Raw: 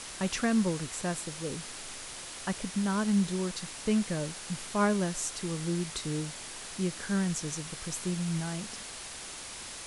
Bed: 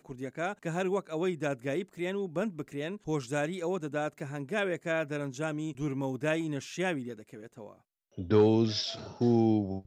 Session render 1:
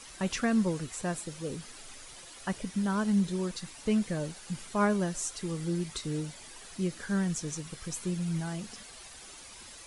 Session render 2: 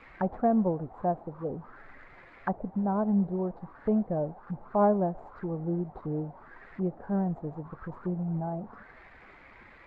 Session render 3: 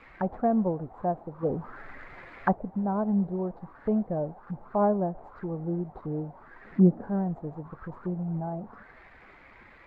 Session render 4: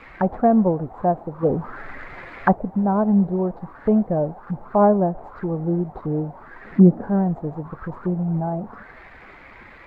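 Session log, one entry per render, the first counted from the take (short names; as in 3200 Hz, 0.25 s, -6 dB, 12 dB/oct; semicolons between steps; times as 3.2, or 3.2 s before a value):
denoiser 10 dB, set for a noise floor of -43 dBFS
median filter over 15 samples; envelope low-pass 750–2500 Hz down, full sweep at -33.5 dBFS
1.43–2.54 gain +6 dB; 4.78–5.24 air absorption 240 m; 6.65–7.09 bell 220 Hz +15 dB 1.5 oct
gain +8.5 dB; limiter -3 dBFS, peak gain reduction 2 dB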